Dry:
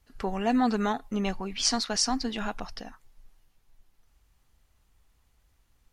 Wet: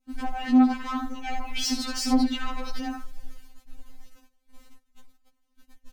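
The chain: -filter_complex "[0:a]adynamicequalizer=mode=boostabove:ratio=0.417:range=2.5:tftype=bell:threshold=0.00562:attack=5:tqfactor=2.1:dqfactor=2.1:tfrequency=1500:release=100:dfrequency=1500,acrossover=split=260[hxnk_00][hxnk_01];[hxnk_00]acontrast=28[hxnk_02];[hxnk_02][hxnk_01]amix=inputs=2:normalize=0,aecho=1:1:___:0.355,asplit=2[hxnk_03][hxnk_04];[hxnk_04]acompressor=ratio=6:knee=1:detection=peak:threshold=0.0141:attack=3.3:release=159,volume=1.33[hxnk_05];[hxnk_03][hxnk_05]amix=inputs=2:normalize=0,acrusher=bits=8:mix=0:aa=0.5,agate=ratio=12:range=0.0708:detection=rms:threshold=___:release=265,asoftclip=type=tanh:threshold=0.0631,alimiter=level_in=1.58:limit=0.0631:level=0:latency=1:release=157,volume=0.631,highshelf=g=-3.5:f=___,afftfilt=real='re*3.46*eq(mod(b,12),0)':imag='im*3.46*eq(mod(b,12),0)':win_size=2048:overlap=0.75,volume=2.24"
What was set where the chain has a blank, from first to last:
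75, 0.00447, 8800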